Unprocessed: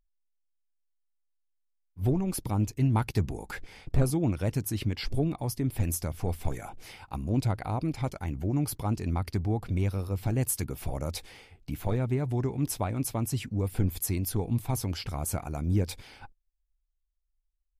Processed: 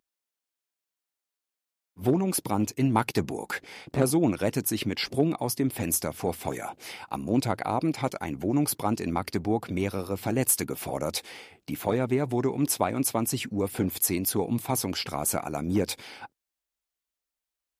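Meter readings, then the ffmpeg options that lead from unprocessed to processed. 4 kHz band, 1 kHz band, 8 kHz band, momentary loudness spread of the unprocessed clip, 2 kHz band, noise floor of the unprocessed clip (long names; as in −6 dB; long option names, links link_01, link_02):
+7.0 dB, +7.0 dB, +7.0 dB, 9 LU, +7.0 dB, −77 dBFS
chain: -af "aeval=exprs='clip(val(0),-1,0.0944)':channel_layout=same,highpass=230,volume=7dB"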